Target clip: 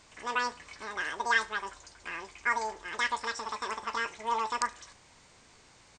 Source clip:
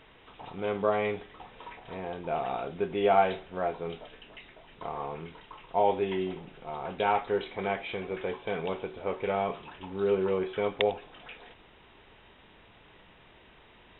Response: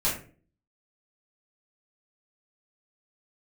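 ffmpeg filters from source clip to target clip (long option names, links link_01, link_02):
-filter_complex "[0:a]asplit=2[link_01][link_02];[link_02]aecho=0:1:86|172|258|344|430:0.0944|0.0557|0.0329|0.0194|0.0114[link_03];[link_01][link_03]amix=inputs=2:normalize=0,asetrate=103194,aresample=44100,volume=-2.5dB"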